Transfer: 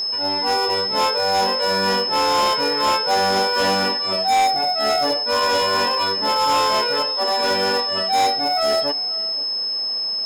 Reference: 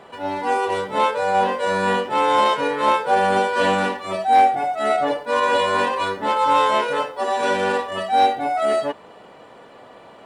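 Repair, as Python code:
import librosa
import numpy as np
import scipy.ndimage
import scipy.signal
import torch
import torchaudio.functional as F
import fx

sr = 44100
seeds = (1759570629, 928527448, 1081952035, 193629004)

y = fx.fix_declip(x, sr, threshold_db=-14.0)
y = fx.fix_declick_ar(y, sr, threshold=6.5)
y = fx.notch(y, sr, hz=5200.0, q=30.0)
y = fx.fix_echo_inverse(y, sr, delay_ms=512, level_db=-19.5)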